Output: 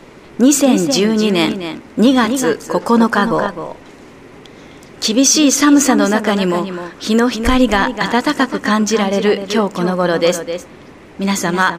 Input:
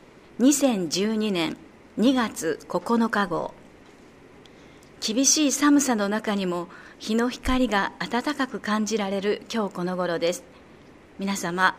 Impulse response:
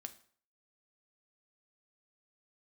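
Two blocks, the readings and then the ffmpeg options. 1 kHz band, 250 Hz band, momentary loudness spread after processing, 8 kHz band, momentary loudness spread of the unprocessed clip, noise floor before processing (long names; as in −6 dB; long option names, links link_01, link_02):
+9.5 dB, +10.0 dB, 12 LU, +8.5 dB, 11 LU, −51 dBFS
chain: -filter_complex "[0:a]asplit=2[link_01][link_02];[link_02]adelay=256.6,volume=-9dB,highshelf=frequency=4000:gain=-5.77[link_03];[link_01][link_03]amix=inputs=2:normalize=0,alimiter=level_in=11.5dB:limit=-1dB:release=50:level=0:latency=1,volume=-1dB"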